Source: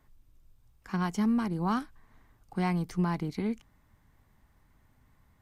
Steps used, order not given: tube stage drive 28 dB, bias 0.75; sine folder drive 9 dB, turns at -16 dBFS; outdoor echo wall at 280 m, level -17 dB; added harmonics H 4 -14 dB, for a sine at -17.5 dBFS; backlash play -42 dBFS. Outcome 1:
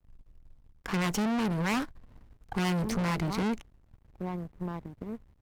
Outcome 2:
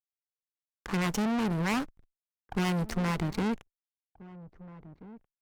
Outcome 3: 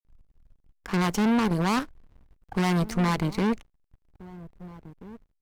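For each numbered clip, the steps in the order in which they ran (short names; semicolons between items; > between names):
outdoor echo > sine folder > backlash > tube stage > added harmonics; backlash > sine folder > tube stage > outdoor echo > added harmonics; tube stage > sine folder > added harmonics > outdoor echo > backlash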